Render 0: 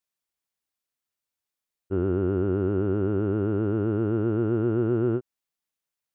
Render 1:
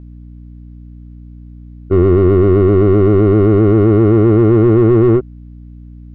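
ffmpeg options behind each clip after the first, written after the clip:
-filter_complex "[0:a]aeval=exprs='val(0)+0.00224*(sin(2*PI*60*n/s)+sin(2*PI*2*60*n/s)/2+sin(2*PI*3*60*n/s)/3+sin(2*PI*4*60*n/s)/4+sin(2*PI*5*60*n/s)/5)':c=same,asplit=2[a][b];[b]highpass=f=720:p=1,volume=23dB,asoftclip=type=tanh:threshold=-14dB[c];[a][c]amix=inputs=2:normalize=0,lowpass=f=2.5k:p=1,volume=-6dB,aemphasis=mode=reproduction:type=riaa,volume=6dB"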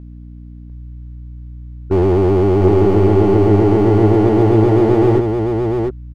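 -af "asoftclip=type=hard:threshold=-10.5dB,aecho=1:1:698:0.596"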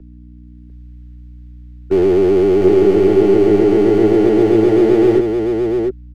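-filter_complex "[0:a]equalizer=f=100:t=o:w=0.67:g=-11,equalizer=f=400:t=o:w=0.67:g=6,equalizer=f=1k:t=o:w=0.67:g=-10,acrossover=split=130|370|1100[a][b][c][d];[d]dynaudnorm=f=230:g=5:m=5.5dB[e];[a][b][c][e]amix=inputs=4:normalize=0,volume=-2dB"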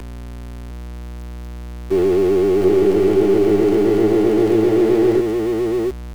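-af "aeval=exprs='val(0)+0.5*0.0668*sgn(val(0))':c=same,volume=-4dB"

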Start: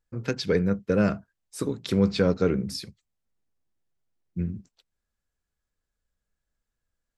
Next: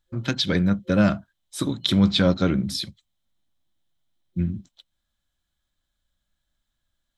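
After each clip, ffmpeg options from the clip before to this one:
-af "superequalizer=7b=0.251:13b=3.16,volume=4.5dB"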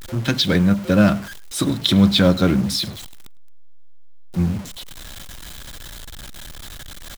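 -filter_complex "[0:a]aeval=exprs='val(0)+0.5*0.0299*sgn(val(0))':c=same,asplit=2[a][b];[b]acrusher=bits=4:mix=0:aa=0.000001,volume=-11dB[c];[a][c]amix=inputs=2:normalize=0,asplit=2[d][e];[e]adelay=105,volume=-23dB,highshelf=f=4k:g=-2.36[f];[d][f]amix=inputs=2:normalize=0,volume=1.5dB"

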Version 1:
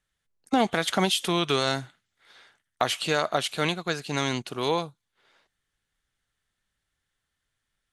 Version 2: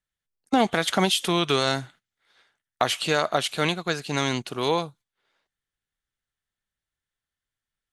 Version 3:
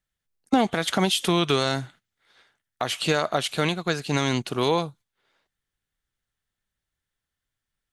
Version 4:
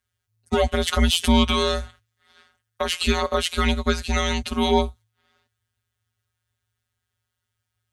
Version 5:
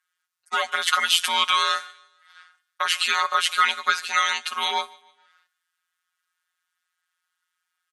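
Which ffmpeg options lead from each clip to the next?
-af "agate=range=-11dB:threshold=-51dB:ratio=16:detection=peak,volume=2dB"
-af "lowshelf=f=330:g=4,alimiter=limit=-12dB:level=0:latency=1:release=325,volume=2.5dB"
-af "afftfilt=real='hypot(re,im)*cos(PI*b)':imag='0':win_size=1024:overlap=0.75,acontrast=81,afreqshift=-110"
-af "highpass=f=1.3k:t=q:w=2.3,aecho=1:1:148|296|444:0.0631|0.0259|0.0106,volume=1.5dB" -ar 44100 -c:a libmp3lame -b:a 56k

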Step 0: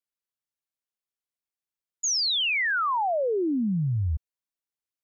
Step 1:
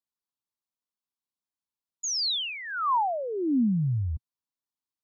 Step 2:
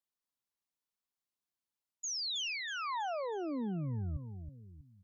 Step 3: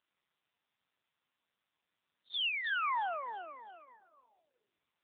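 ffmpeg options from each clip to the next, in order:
-af "equalizer=f=125:t=o:w=1:g=4,equalizer=f=250:t=o:w=1:g=9,equalizer=f=500:t=o:w=1:g=-5,equalizer=f=1k:t=o:w=1:g=11,equalizer=f=2k:t=o:w=1:g=-11,equalizer=f=4k:t=o:w=1:g=6,volume=-6dB"
-af "areverse,acompressor=threshold=-35dB:ratio=6,areverse,aecho=1:1:322|644|966|1288:0.376|0.147|0.0572|0.0223,volume=-1.5dB"
-af "highpass=f=860:w=0.5412,highpass=f=860:w=1.3066,volume=7.5dB" -ar 8000 -c:a libopencore_amrnb -b:a 5900

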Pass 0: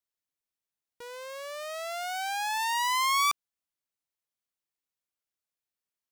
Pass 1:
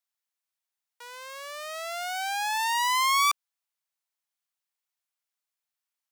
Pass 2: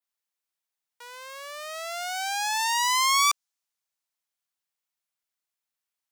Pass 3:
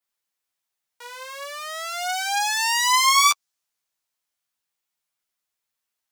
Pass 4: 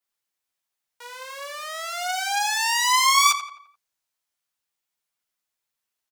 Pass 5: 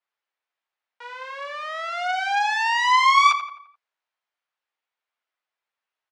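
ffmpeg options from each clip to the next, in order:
-af "highpass=f=670:w=0.5412,highpass=f=670:w=1.3066,volume=2.5dB"
-af "adynamicequalizer=threshold=0.00794:dfrequency=6200:dqfactor=1.1:tfrequency=6200:tqfactor=1.1:attack=5:release=100:ratio=0.375:range=3.5:mode=boostabove:tftype=bell"
-af "flanger=delay=8.8:depth=9:regen=-8:speed=0.35:shape=sinusoidal,volume=8dB"
-filter_complex "[0:a]asplit=2[a][b];[b]adelay=86,lowpass=f=3.2k:p=1,volume=-10dB,asplit=2[c][d];[d]adelay=86,lowpass=f=3.2k:p=1,volume=0.47,asplit=2[e][f];[f]adelay=86,lowpass=f=3.2k:p=1,volume=0.47,asplit=2[g][h];[h]adelay=86,lowpass=f=3.2k:p=1,volume=0.47,asplit=2[i][j];[j]adelay=86,lowpass=f=3.2k:p=1,volume=0.47[k];[a][c][e][g][i][k]amix=inputs=6:normalize=0,volume=-1dB"
-af "highpass=510,lowpass=2.5k,volume=4dB"

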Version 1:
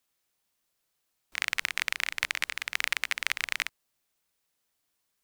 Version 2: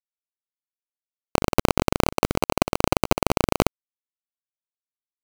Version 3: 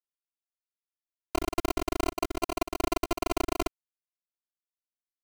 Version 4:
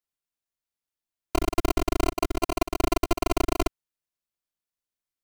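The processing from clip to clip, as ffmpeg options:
-af "acrusher=samples=25:mix=1:aa=0.000001,aeval=exprs='sgn(val(0))*max(abs(val(0))-0.00422,0)':c=same,alimiter=level_in=15.5dB:limit=-1dB:release=50:level=0:latency=1,volume=-1dB"
-af "afftfilt=real='hypot(re,im)*cos(PI*b)':imag='0':win_size=512:overlap=0.75,volume=-5.5dB"
-af "lowshelf=f=180:g=6,volume=3dB"

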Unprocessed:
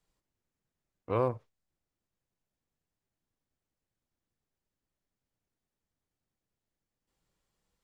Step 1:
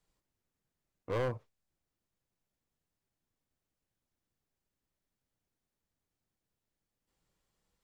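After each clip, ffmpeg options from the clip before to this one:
-af "asoftclip=type=hard:threshold=-28.5dB"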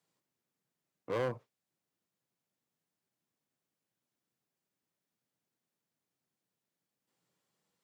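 -af "highpass=f=130:w=0.5412,highpass=f=130:w=1.3066"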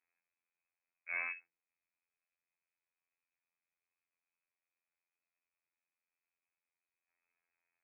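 -af "lowpass=f=2.3k:t=q:w=0.5098,lowpass=f=2.3k:t=q:w=0.6013,lowpass=f=2.3k:t=q:w=0.9,lowpass=f=2.3k:t=q:w=2.563,afreqshift=-2700,afftfilt=real='hypot(re,im)*cos(PI*b)':imag='0':win_size=2048:overlap=0.75,bandreject=f=167.8:t=h:w=4,bandreject=f=335.6:t=h:w=4,bandreject=f=503.4:t=h:w=4,volume=-1dB"

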